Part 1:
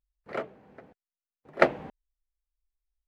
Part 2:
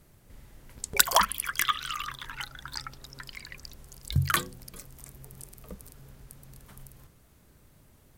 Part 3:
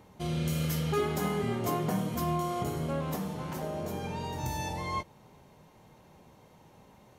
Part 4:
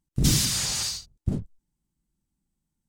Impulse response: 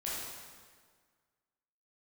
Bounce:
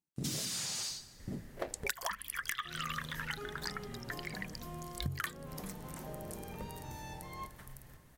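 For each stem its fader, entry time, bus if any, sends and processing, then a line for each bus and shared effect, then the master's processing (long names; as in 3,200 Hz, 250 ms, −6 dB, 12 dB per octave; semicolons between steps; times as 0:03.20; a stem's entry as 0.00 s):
−8.0 dB, 0.00 s, no send, running median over 41 samples; Bessel high-pass filter 400 Hz
−3.0 dB, 0.90 s, no send, parametric band 1,800 Hz +9 dB 0.31 octaves
−14.5 dB, 2.45 s, send −15 dB, speech leveller
−10.5 dB, 0.00 s, send −14.5 dB, high-pass filter 160 Hz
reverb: on, RT60 1.7 s, pre-delay 12 ms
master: downward compressor 16 to 1, threshold −33 dBFS, peak gain reduction 18.5 dB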